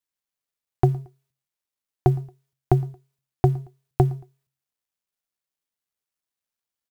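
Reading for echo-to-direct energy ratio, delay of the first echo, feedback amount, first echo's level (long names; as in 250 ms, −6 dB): −22.5 dB, 113 ms, 32%, −23.0 dB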